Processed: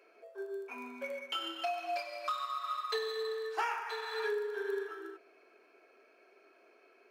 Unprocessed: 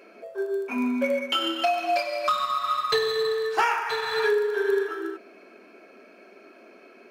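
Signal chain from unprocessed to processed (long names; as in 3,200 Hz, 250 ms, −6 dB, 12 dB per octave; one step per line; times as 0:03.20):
four-pole ladder high-pass 360 Hz, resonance 30%
parametric band 570 Hz −7.5 dB 0.39 octaves
level −5 dB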